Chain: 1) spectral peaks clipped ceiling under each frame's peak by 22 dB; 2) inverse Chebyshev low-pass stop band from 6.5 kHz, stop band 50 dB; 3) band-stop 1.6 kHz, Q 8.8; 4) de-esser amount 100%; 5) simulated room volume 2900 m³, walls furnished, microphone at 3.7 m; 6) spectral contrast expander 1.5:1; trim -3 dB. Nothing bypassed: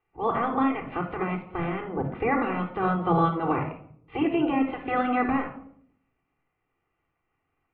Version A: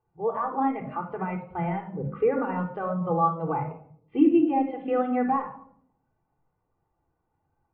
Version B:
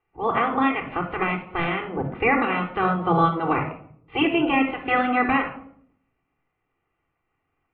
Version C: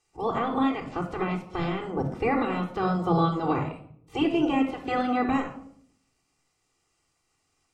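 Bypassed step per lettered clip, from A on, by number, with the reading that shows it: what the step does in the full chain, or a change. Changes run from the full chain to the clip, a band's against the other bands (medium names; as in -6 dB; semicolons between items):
1, 2 kHz band -8.0 dB; 4, 4 kHz band +9.0 dB; 2, 4 kHz band +6.0 dB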